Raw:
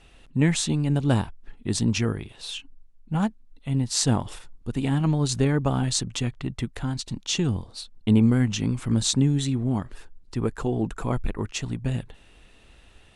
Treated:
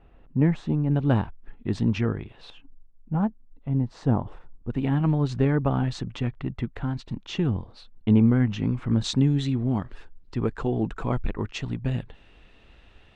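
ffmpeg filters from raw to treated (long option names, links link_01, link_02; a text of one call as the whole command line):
ffmpeg -i in.wav -af "asetnsamples=nb_out_samples=441:pad=0,asendcmd='0.91 lowpass f 2200;2.5 lowpass f 1100;4.7 lowpass f 2200;9.04 lowpass f 3700',lowpass=1200" out.wav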